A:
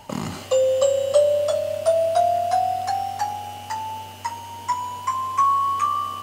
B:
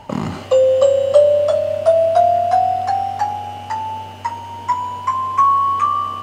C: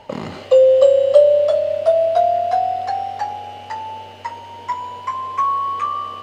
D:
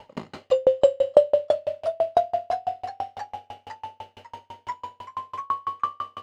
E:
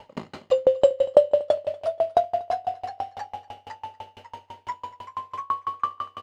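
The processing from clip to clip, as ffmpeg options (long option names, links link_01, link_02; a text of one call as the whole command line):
ffmpeg -i in.wav -af "lowpass=frequency=1900:poles=1,volume=6.5dB" out.wav
ffmpeg -i in.wav -af "equalizer=frequency=500:width_type=o:width=1:gain=11,equalizer=frequency=2000:width_type=o:width=1:gain=6,equalizer=frequency=4000:width_type=o:width=1:gain=8,volume=-9dB" out.wav
ffmpeg -i in.wav -af "aeval=exprs='val(0)*pow(10,-37*if(lt(mod(6*n/s,1),2*abs(6)/1000),1-mod(6*n/s,1)/(2*abs(6)/1000),(mod(6*n/s,1)-2*abs(6)/1000)/(1-2*abs(6)/1000))/20)':channel_layout=same" out.wav
ffmpeg -i in.wav -af "aecho=1:1:239|478:0.0891|0.0267" out.wav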